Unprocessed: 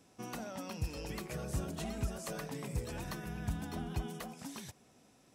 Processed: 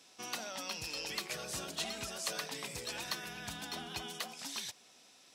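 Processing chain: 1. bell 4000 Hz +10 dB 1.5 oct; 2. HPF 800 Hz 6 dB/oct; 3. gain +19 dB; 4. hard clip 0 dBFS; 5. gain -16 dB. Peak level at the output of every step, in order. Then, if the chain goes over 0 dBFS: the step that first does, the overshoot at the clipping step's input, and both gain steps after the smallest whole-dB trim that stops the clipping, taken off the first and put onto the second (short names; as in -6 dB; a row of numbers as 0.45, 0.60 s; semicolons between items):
-23.5, -24.5, -5.5, -5.5, -21.5 dBFS; no overload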